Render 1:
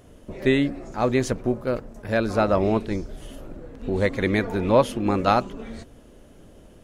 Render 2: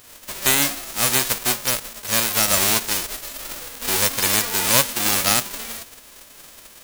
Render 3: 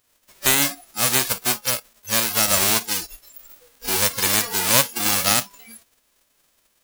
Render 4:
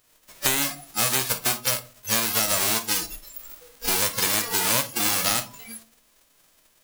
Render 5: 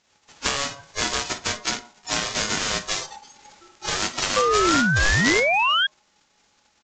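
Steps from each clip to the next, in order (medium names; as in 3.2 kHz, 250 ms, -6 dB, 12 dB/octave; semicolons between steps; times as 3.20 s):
formants flattened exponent 0.1; in parallel at +0.5 dB: peak limiter -10.5 dBFS, peak gain reduction 9.5 dB; on the sum: trim -3 dB
spectral noise reduction 20 dB
compression 6:1, threshold -23 dBFS, peak gain reduction 11.5 dB; reverberation RT60 0.35 s, pre-delay 6 ms, DRR 8.5 dB; trim +3 dB
painted sound rise, 4.36–5.87 s, 320–2500 Hz -20 dBFS; ring modulator 840 Hz; resampled via 16 kHz; trim +3.5 dB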